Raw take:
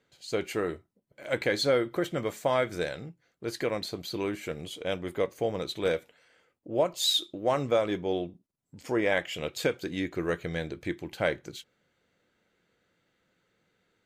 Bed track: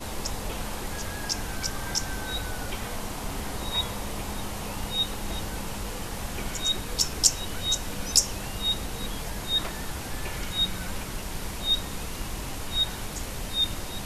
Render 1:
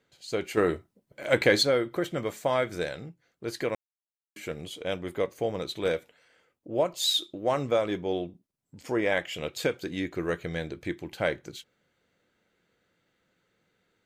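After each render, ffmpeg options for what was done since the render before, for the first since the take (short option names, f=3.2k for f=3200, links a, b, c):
-filter_complex "[0:a]asettb=1/sr,asplit=3[a][b][c];[a]atrim=end=0.574[d];[b]atrim=start=0.57:end=1.63,asetpts=PTS-STARTPTS,afade=t=in:d=0.004:c=qsin,afade=t=out:st=1.056:d=0.004:c=qsin,acontrast=63[e];[c]atrim=start=1.626[f];[d][e]acrossfade=d=0.004:c1=hsin:c2=qsin[g];[g][f]acrossfade=d=0.004:c1=qsin:c2=hsin,asplit=3[h][i][j];[h]atrim=end=3.75,asetpts=PTS-STARTPTS,afade=t=out:st=3.746:d=0.004:c=hsin[k];[i]atrim=start=3.75:end=4.36,asetpts=PTS-STARTPTS,volume=0[l];[j]atrim=start=4.36,asetpts=PTS-STARTPTS,afade=t=in:d=0.004:c=hsin[m];[k][l][m]concat=n=3:v=0:a=1"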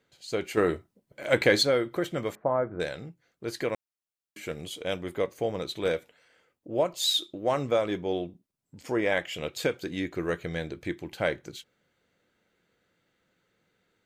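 -filter_complex "[0:a]asettb=1/sr,asplit=3[a][b][c];[a]atrim=end=2.354[d];[b]atrim=start=2.35:end=2.8,asetpts=PTS-STARTPTS,afade=t=in:d=0.004:c=qsin,afade=t=out:st=0.446:d=0.004:c=qsin,lowpass=f=1.3k:w=0.5412,lowpass=f=1.3k:w=1.3066[e];[c]atrim=start=2.796[f];[d][e]acrossfade=d=0.004:c1=hsin:c2=qsin[g];[g][f]acrossfade=d=0.004:c1=qsin:c2=hsin,asettb=1/sr,asplit=3[h][i][j];[h]atrim=end=4.484[k];[i]atrim=start=4.48:end=5.04,asetpts=PTS-STARTPTS,afade=t=in:d=0.004:c=qsin,afade=t=out:st=0.556:d=0.004:c=qsin,highshelf=f=4.2k:g=4.5[l];[j]atrim=start=5.036[m];[k][l]acrossfade=d=0.004:c1=hsin:c2=qsin[n];[n][m]acrossfade=d=0.004:c1=qsin:c2=hsin"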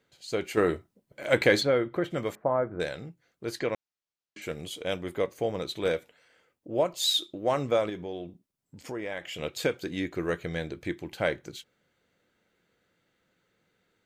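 -filter_complex "[0:a]asplit=3[a][b][c];[a]afade=t=out:st=1.59:d=0.02[d];[b]bass=f=250:g=2,treble=f=4k:g=-13,afade=t=in:st=1.59:d=0.02,afade=t=out:st=2.1:d=0.02[e];[c]afade=t=in:st=2.1:d=0.02[f];[d][e][f]amix=inputs=3:normalize=0,asettb=1/sr,asplit=3[g][h][i];[g]atrim=end=3.594[j];[h]atrim=start=3.59:end=4.42,asetpts=PTS-STARTPTS,afade=t=in:d=0.004:c=qsin,afade=t=out:st=0.826:d=0.004:c=qsin,lowpass=f=6.6k:w=0.5412,lowpass=f=6.6k:w=1.3066[k];[i]atrim=start=4.416[l];[j][k]acrossfade=d=0.004:c1=hsin:c2=qsin[m];[m][l]acrossfade=d=0.004:c1=qsin:c2=hsin,asettb=1/sr,asplit=3[n][o][p];[n]atrim=end=7.894[q];[o]atrim=start=7.89:end=9.39,asetpts=PTS-STARTPTS,afade=t=in:d=0.004:c=qsin,afade=t=out:st=1.496:d=0.004:c=qsin,acompressor=threshold=-35dB:ratio=2.5:attack=3.2:release=140:knee=1:detection=peak[r];[p]atrim=start=9.386[s];[q][r]acrossfade=d=0.004:c1=hsin:c2=qsin[t];[t][s]acrossfade=d=0.004:c1=qsin:c2=hsin"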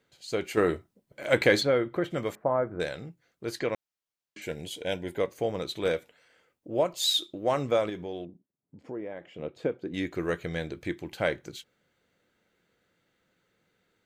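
-filter_complex "[0:a]asettb=1/sr,asplit=3[a][b][c];[a]atrim=end=4.434[d];[b]atrim=start=4.43:end=5.18,asetpts=PTS-STARTPTS,afade=t=in:d=0.004:c=qsin,afade=t=out:st=0.746:d=0.004:c=qsin,asuperstop=centerf=1200:order=20:qfactor=3.7[e];[c]atrim=start=5.176[f];[d][e]acrossfade=d=0.004:c1=hsin:c2=qsin[g];[g][f]acrossfade=d=0.004:c1=qsin:c2=hsin,asettb=1/sr,asplit=3[h][i][j];[h]atrim=end=8.254[k];[i]atrim=start=8.25:end=9.94,asetpts=PTS-STARTPTS,afade=t=in:d=0.004:c=qsin,afade=t=out:st=1.686:d=0.004:c=qsin,bandpass=f=290:t=q:w=0.59[l];[j]atrim=start=9.936[m];[k][l]acrossfade=d=0.004:c1=hsin:c2=qsin[n];[n][m]acrossfade=d=0.004:c1=qsin:c2=hsin"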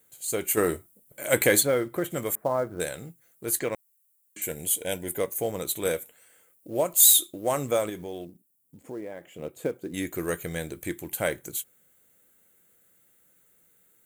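-af "aexciter=amount=12.2:drive=7.6:freq=7.5k,acrusher=bits=7:mode=log:mix=0:aa=0.000001"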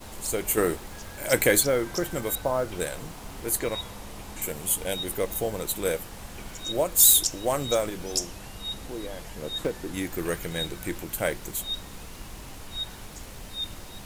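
-filter_complex "[1:a]volume=-7.5dB[a];[0:a][a]amix=inputs=2:normalize=0"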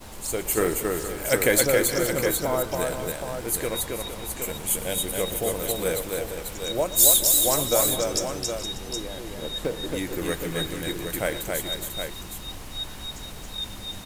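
-af "aecho=1:1:115|273|425|464|588|766:0.15|0.668|0.15|0.251|0.106|0.422"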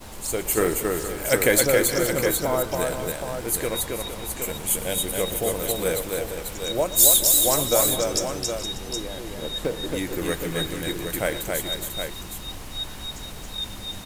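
-af "volume=1.5dB,alimiter=limit=-3dB:level=0:latency=1"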